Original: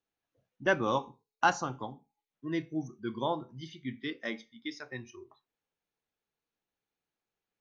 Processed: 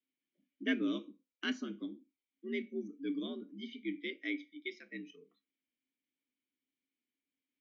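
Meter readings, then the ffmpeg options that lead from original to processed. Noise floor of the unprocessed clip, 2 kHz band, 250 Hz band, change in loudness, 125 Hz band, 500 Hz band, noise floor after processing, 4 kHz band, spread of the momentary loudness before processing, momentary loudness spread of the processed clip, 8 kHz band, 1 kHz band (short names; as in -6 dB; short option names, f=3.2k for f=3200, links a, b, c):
under -85 dBFS, -7.0 dB, -0.5 dB, -5.5 dB, under -10 dB, -8.5 dB, under -85 dBFS, -2.0 dB, 16 LU, 13 LU, n/a, -24.0 dB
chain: -filter_complex "[0:a]afreqshift=71,asplit=3[a][b][c];[a]bandpass=f=270:t=q:w=8,volume=0dB[d];[b]bandpass=f=2.29k:t=q:w=8,volume=-6dB[e];[c]bandpass=f=3.01k:t=q:w=8,volume=-9dB[f];[d][e][f]amix=inputs=3:normalize=0,volume=9.5dB"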